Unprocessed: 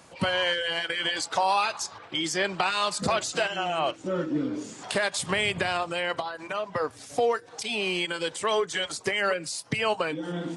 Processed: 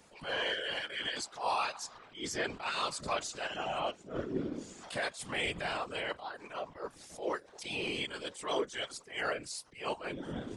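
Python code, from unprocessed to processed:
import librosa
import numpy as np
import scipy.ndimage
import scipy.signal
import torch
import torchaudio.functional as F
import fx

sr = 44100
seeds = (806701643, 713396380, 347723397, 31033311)

y = fx.whisperise(x, sr, seeds[0])
y = fx.attack_slew(y, sr, db_per_s=160.0)
y = y * 10.0 ** (-8.0 / 20.0)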